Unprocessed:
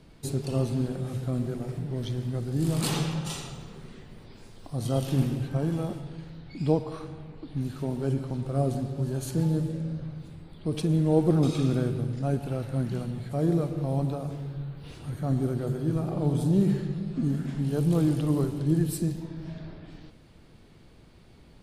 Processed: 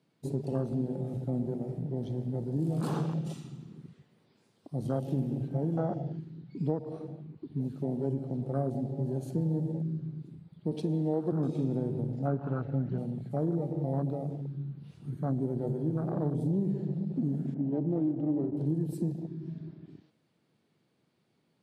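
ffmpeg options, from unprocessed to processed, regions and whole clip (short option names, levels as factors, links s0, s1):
-filter_complex "[0:a]asettb=1/sr,asplit=3[s0][s1][s2];[s0]atrim=end=5.774[s3];[s1]atrim=start=5.77:end=6.19,asetpts=PTS-STARTPTS,afade=t=in:d=0.004:c=qsin,afade=t=out:st=0.416:d=0.004:c=qsin,acontrast=77,highpass=110,equalizer=f=240:t=q:w=4:g=-9,equalizer=f=390:t=q:w=4:g=-5,equalizer=f=710:t=q:w=4:g=7,equalizer=f=1100:t=q:w=4:g=-7,equalizer=f=2500:t=q:w=4:g=-6,equalizer=f=3900:t=q:w=4:g=-7,lowpass=f=6100:w=0.5412,lowpass=f=6100:w=1.3066[s4];[s2]atrim=start=6.186[s5];[s3][s4]acrossfade=d=0.004:c1=hsin:c2=qsin[s6];[s6][s5]acrossfade=d=0.004:c1=qsin:c2=hsin,asettb=1/sr,asplit=3[s7][s8][s9];[s7]atrim=end=10.714[s10];[s8]atrim=start=10.71:end=11.32,asetpts=PTS-STARTPTS,afade=t=in:d=0.004:c=qsin,afade=t=out:st=0.606:d=0.004:c=qsin,highpass=170,equalizer=f=4000:t=o:w=1.3:g=7.5[s11];[s9]atrim=start=11.316[s12];[s10][s11]acrossfade=d=0.004:c1=hsin:c2=qsin[s13];[s13][s12]acrossfade=d=0.004:c1=qsin:c2=hsin,asettb=1/sr,asplit=3[s14][s15][s16];[s14]atrim=end=12.274[s17];[s15]atrim=start=12.27:end=12.98,asetpts=PTS-STARTPTS,afade=t=in:d=0.004:c=qsin,afade=t=out:st=0.706:d=0.004:c=qsin,lowpass=3600,equalizer=f=1400:w=1.6:g=8,aecho=1:1:6.9:0.6,atrim=end_sample=31311[s18];[s16]atrim=start=12.976[s19];[s17][s18]acrossfade=d=0.004:c1=hsin:c2=qsin[s20];[s20][s19]acrossfade=d=0.004:c1=qsin:c2=hsin,asettb=1/sr,asplit=3[s21][s22][s23];[s21]atrim=end=17.544[s24];[s22]atrim=start=17.54:end=18.57,asetpts=PTS-STARTPTS,afade=t=in:d=0.004:c=qsin,afade=t=out:st=1.026:d=0.004:c=qsin,aecho=1:1:3.2:0.49,atrim=end_sample=45423,adynamicsmooth=sensitivity=2:basefreq=1100[s25];[s23]atrim=start=18.566[s26];[s24][s25]acrossfade=d=0.004:c1=hsin:c2=qsin[s27];[s27][s26]acrossfade=d=0.004:c1=qsin:c2=hsin,highpass=f=130:w=0.5412,highpass=f=130:w=1.3066,afwtdn=0.0224,acompressor=threshold=0.0501:ratio=6"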